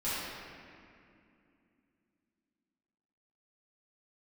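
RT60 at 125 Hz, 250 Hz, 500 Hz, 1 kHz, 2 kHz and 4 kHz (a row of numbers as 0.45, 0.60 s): 3.2, 4.0, 2.7, 2.3, 2.4, 1.6 s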